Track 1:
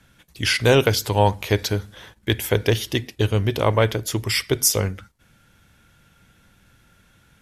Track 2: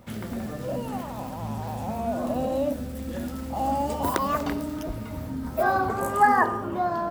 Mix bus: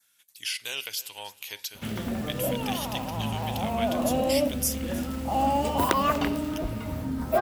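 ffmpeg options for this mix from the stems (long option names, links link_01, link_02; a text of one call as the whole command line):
ffmpeg -i stem1.wav -i stem2.wav -filter_complex "[0:a]aderivative,acompressor=threshold=-41dB:ratio=1.5,volume=-1dB,asplit=2[link_01][link_02];[link_02]volume=-18.5dB[link_03];[1:a]adelay=1750,volume=1.5dB[link_04];[link_03]aecho=0:1:312|624|936|1248:1|0.28|0.0784|0.022[link_05];[link_01][link_04][link_05]amix=inputs=3:normalize=0,adynamicequalizer=threshold=0.00282:dfrequency=2800:dqfactor=2.4:tfrequency=2800:tqfactor=2.4:attack=5:release=100:ratio=0.375:range=4:mode=boostabove:tftype=bell" out.wav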